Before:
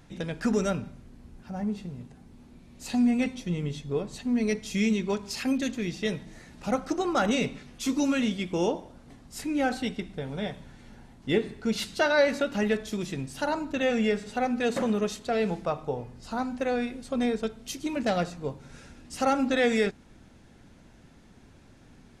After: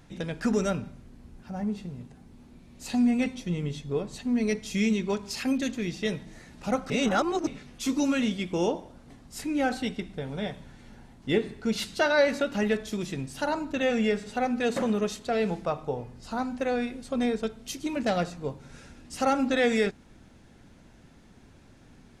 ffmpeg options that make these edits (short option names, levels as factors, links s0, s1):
-filter_complex "[0:a]asplit=3[s0][s1][s2];[s0]atrim=end=6.902[s3];[s1]atrim=start=6.898:end=7.472,asetpts=PTS-STARTPTS,areverse[s4];[s2]atrim=start=7.468[s5];[s3][s4]acrossfade=d=0.004:c1=hsin:c2=hsin[s6];[s6][s5]acrossfade=d=0.004:c1=hsin:c2=hsin"